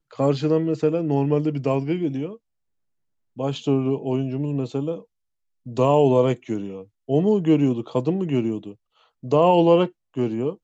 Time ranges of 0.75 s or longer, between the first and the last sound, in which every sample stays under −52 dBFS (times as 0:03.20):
0:02.37–0:03.36